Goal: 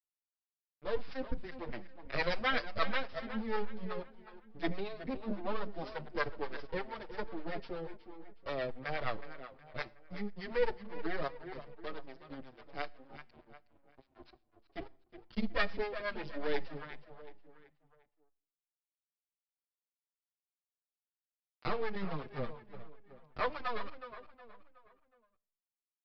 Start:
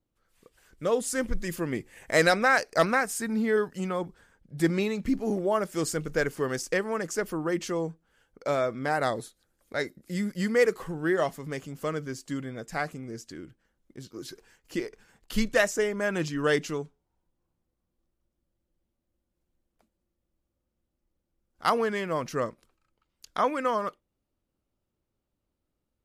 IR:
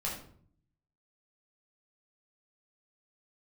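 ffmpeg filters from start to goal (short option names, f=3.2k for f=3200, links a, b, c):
-filter_complex "[0:a]asettb=1/sr,asplit=3[a][b][c];[a]atrim=end=21.954[d];[b]atrim=start=21.95:end=23.37,asetpts=PTS-STARTPTS,afade=t=in:d=0.004:c=qsin,afade=t=out:st=1.416:d=0.004:c=qsin,bass=f=250:g=10,treble=f=4k:g=-4[e];[c]atrim=start=23.366[f];[d][e]acrossfade=d=0.004:c1=hsin:c2=qsin[g];[g][f]acrossfade=d=0.004:c1=qsin:c2=hsin,aeval=exprs='max(val(0),0)':c=same,acrossover=split=470[h][i];[h]aeval=exprs='val(0)*(1-0.7/2+0.7/2*cos(2*PI*8.3*n/s))':c=same[j];[i]aeval=exprs='val(0)*(1-0.7/2-0.7/2*cos(2*PI*8.3*n/s))':c=same[k];[j][k]amix=inputs=2:normalize=0,aeval=exprs='sgn(val(0))*max(abs(val(0))-0.00708,0)':c=same,asplit=2[l][m];[m]adelay=367,lowpass=f=4.1k:p=1,volume=-11.5dB,asplit=2[n][o];[o]adelay=367,lowpass=f=4.1k:p=1,volume=0.43,asplit=2[p][q];[q]adelay=367,lowpass=f=4.1k:p=1,volume=0.43,asplit=2[r][s];[s]adelay=367,lowpass=f=4.1k:p=1,volume=0.43[t];[l][n][p][r][t]amix=inputs=5:normalize=0,asplit=2[u][v];[1:a]atrim=start_sample=2205,highshelf=f=4.1k:g=10.5[w];[v][w]afir=irnorm=-1:irlink=0,volume=-23.5dB[x];[u][x]amix=inputs=2:normalize=0,aresample=11025,aresample=44100,asplit=2[y][z];[z]adelay=6.5,afreqshift=-1.1[aa];[y][aa]amix=inputs=2:normalize=1,volume=1.5dB"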